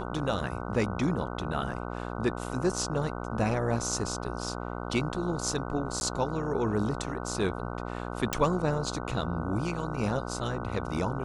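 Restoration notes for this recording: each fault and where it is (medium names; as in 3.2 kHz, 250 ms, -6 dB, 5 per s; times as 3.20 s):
buzz 60 Hz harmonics 25 -36 dBFS
6.00–6.01 s: dropout
8.33 s: pop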